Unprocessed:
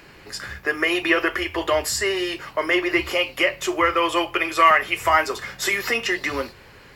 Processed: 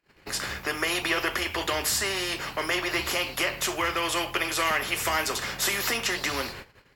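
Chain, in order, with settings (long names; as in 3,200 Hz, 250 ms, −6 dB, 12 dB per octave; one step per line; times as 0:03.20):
noise gate −43 dBFS, range −40 dB
every bin compressed towards the loudest bin 2 to 1
level −8.5 dB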